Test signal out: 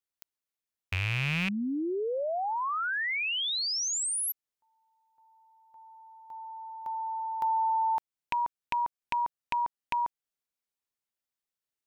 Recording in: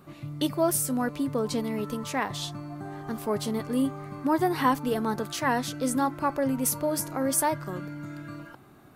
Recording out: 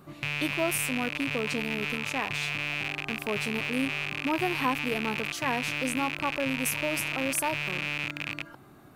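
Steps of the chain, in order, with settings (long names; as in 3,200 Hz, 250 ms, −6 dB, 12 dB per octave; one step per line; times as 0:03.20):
loose part that buzzes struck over −42 dBFS, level −15 dBFS
in parallel at +2 dB: downward compressor, threshold −35 dBFS
on the sum: level −6.5 dB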